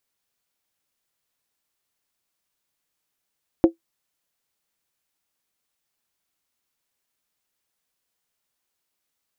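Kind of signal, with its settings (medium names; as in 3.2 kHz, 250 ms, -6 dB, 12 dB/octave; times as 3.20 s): skin hit, lowest mode 332 Hz, decay 0.12 s, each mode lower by 9.5 dB, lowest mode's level -5.5 dB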